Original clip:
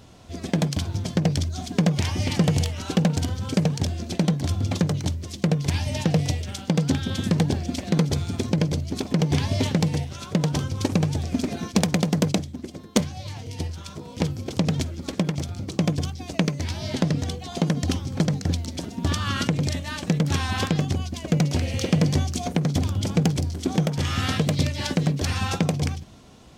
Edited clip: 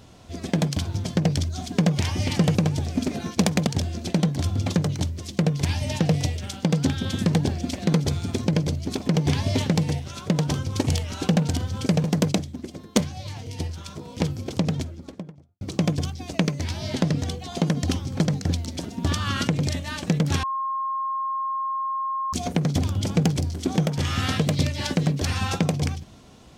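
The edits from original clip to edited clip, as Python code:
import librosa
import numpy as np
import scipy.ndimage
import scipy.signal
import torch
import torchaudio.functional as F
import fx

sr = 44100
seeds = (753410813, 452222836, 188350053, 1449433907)

y = fx.studio_fade_out(x, sr, start_s=14.4, length_s=1.21)
y = fx.edit(y, sr, fx.swap(start_s=2.55, length_s=1.17, other_s=10.92, other_length_s=1.12),
    fx.bleep(start_s=20.43, length_s=1.9, hz=1070.0, db=-24.0), tone=tone)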